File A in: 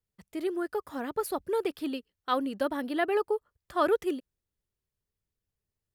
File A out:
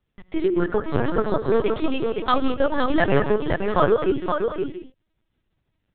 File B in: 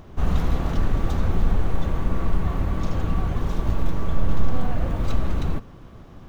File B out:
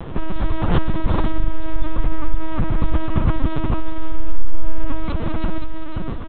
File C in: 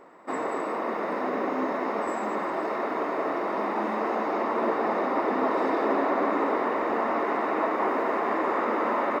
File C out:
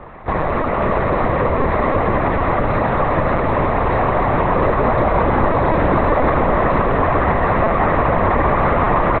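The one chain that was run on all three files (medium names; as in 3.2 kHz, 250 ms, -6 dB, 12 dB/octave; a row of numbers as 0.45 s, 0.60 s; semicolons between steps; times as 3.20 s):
compression 2:1, threshold -33 dBFS; on a send: delay 518 ms -5 dB; on the sum: gated-style reverb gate 220 ms rising, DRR 8.5 dB; LPC vocoder at 8 kHz pitch kept; peak normalisation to -3 dBFS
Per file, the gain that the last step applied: +13.0 dB, +13.0 dB, +14.5 dB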